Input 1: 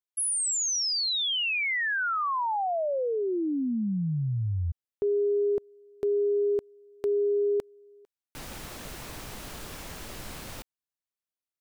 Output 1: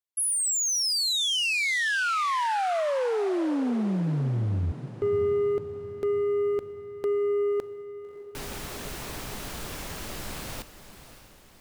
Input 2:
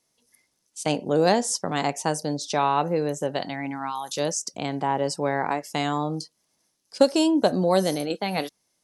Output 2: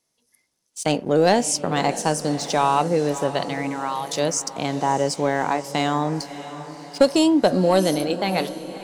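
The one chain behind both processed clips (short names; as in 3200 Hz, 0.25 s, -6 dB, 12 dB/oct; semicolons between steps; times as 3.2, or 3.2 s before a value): sample leveller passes 1; diffused feedback echo 0.603 s, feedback 49%, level -13 dB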